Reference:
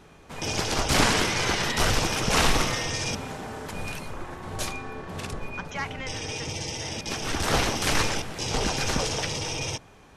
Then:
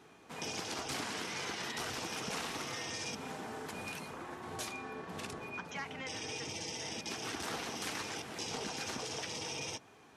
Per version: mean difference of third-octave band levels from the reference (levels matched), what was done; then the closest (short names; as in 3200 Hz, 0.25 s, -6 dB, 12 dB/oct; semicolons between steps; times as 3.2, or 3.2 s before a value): 4.0 dB: HPF 160 Hz 12 dB/oct; notch 570 Hz, Q 12; compressor 6:1, threshold -31 dBFS, peak gain reduction 13.5 dB; flange 1.1 Hz, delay 2.4 ms, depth 2.2 ms, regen -72%; gain -1.5 dB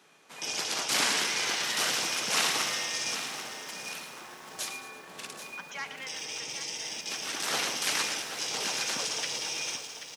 8.0 dB: Bessel high-pass 240 Hz, order 8; tilt shelf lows -5.5 dB, about 1300 Hz; on a send: feedback echo 0.113 s, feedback 51%, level -11.5 dB; on the sum: lo-fi delay 0.784 s, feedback 35%, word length 7-bit, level -9.5 dB; gain -6.5 dB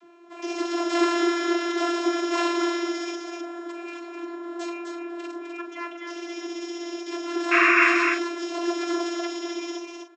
17.0 dB: vocoder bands 32, saw 343 Hz; painted sound noise, 7.51–7.89, 1000–2800 Hz -19 dBFS; doubler 43 ms -9.5 dB; echo 0.256 s -5 dB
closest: first